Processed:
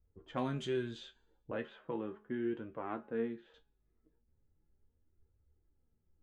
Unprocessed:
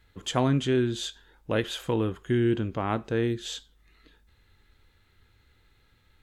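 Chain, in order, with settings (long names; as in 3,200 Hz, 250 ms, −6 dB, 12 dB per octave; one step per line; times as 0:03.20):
low-pass that shuts in the quiet parts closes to 460 Hz, open at −20.5 dBFS
0:01.51–0:03.54: three-way crossover with the lows and the highs turned down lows −14 dB, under 160 Hz, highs −18 dB, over 2,400 Hz
tuned comb filter 210 Hz, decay 0.89 s, mix 40%
flanger 0.37 Hz, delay 1.5 ms, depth 7.8 ms, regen +45%
tuned comb filter 77 Hz, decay 0.15 s, harmonics all, mix 80%
level +1.5 dB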